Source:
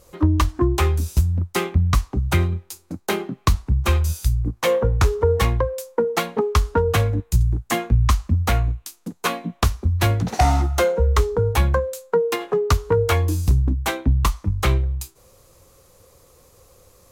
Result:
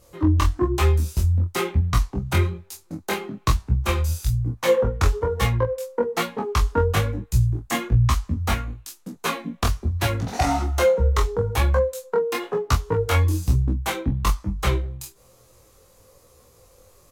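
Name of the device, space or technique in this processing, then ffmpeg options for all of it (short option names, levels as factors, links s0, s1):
double-tracked vocal: -filter_complex "[0:a]asplit=2[s0][s1];[s1]adelay=25,volume=0.596[s2];[s0][s2]amix=inputs=2:normalize=0,flanger=delay=15.5:depth=5.9:speed=1.1,asplit=3[s3][s4][s5];[s3]afade=t=out:st=5.52:d=0.02[s6];[s4]adynamicequalizer=threshold=0.00708:dfrequency=3300:dqfactor=0.7:tfrequency=3300:tqfactor=0.7:attack=5:release=100:ratio=0.375:range=2.5:mode=cutabove:tftype=highshelf,afade=t=in:st=5.52:d=0.02,afade=t=out:st=6.08:d=0.02[s7];[s5]afade=t=in:st=6.08:d=0.02[s8];[s6][s7][s8]amix=inputs=3:normalize=0"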